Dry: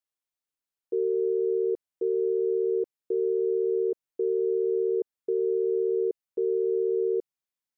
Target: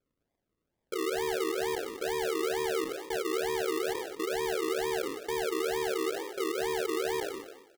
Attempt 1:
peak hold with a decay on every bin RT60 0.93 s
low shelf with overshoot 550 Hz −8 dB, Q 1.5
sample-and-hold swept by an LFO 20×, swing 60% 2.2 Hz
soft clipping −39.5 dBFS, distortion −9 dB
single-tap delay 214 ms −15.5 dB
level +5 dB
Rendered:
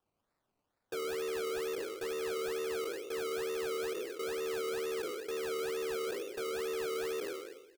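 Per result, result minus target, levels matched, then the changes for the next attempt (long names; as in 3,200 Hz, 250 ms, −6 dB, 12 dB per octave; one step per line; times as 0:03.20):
sample-and-hold swept by an LFO: distortion −16 dB; soft clipping: distortion +9 dB
change: sample-and-hold swept by an LFO 44×, swing 60% 2.2 Hz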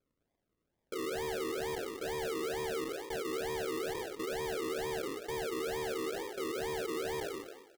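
soft clipping: distortion +9 dB
change: soft clipping −31 dBFS, distortion −18 dB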